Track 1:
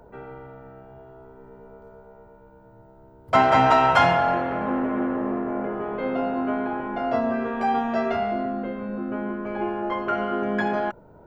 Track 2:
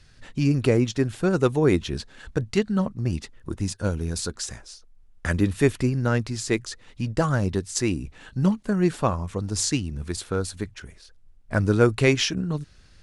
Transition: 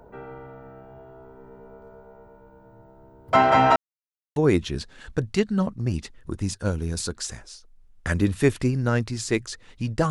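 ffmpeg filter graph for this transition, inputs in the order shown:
-filter_complex "[0:a]apad=whole_dur=10.1,atrim=end=10.1,asplit=2[a][b];[a]atrim=end=3.76,asetpts=PTS-STARTPTS,afade=t=out:st=3.756:d=0.004:c=hsin[c];[b]atrim=start=3.76:end=4.36,asetpts=PTS-STARTPTS,volume=0[d];[1:a]atrim=start=1.55:end=7.29,asetpts=PTS-STARTPTS,afade=t=in:d=0.004:c=hsin[e];[c][d][e]concat=n=3:v=0:a=1"

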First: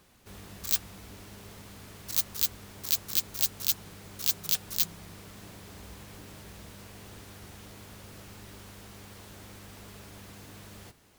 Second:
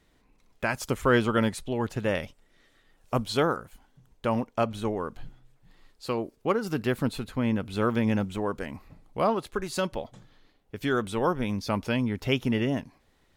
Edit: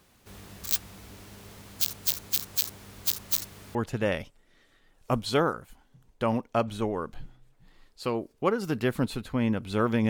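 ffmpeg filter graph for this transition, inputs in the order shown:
-filter_complex "[0:a]apad=whole_dur=10.09,atrim=end=10.09,asplit=2[a][b];[a]atrim=end=1.782[c];[b]atrim=start=1.778:end=3.752,asetpts=PTS-STARTPTS,areverse[d];[1:a]atrim=start=1.778:end=8.12[e];[c][d]acrossfade=d=0.004:c1=hsin:c2=hsin[f];[f][e]acrossfade=d=0.004:c1=hsin:c2=hsin"

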